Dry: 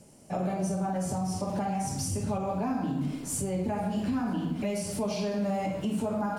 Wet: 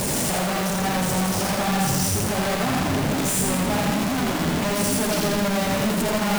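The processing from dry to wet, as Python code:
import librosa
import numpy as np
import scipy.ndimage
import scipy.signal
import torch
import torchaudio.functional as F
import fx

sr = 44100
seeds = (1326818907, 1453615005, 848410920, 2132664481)

y = np.sign(x) * np.sqrt(np.mean(np.square(x)))
y = fx.echo_split(y, sr, split_hz=520.0, low_ms=793, high_ms=83, feedback_pct=52, wet_db=-3)
y = y * librosa.db_to_amplitude(6.0)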